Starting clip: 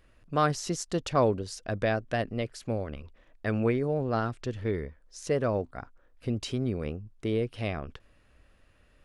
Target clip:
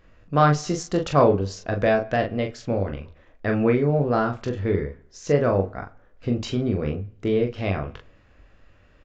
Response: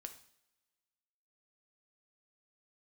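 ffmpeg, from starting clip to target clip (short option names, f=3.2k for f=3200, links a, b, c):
-filter_complex "[0:a]aecho=1:1:21|41:0.398|0.531,asoftclip=type=hard:threshold=-11.5dB,aresample=16000,aresample=44100,asplit=2[a][b];[1:a]atrim=start_sample=2205,lowpass=2.9k[c];[b][c]afir=irnorm=-1:irlink=0,volume=0.5dB[d];[a][d]amix=inputs=2:normalize=0,volume=2dB"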